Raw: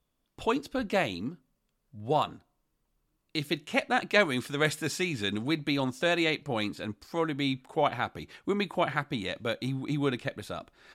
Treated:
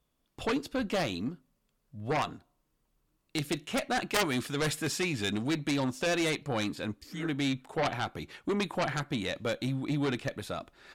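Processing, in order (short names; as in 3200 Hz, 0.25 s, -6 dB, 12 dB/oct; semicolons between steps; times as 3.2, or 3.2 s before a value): spectral repair 7.03–7.24, 220–1700 Hz both; added harmonics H 3 -6 dB, 4 -7 dB, 6 -11 dB, 7 -12 dB, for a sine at -9.5 dBFS; gain -5.5 dB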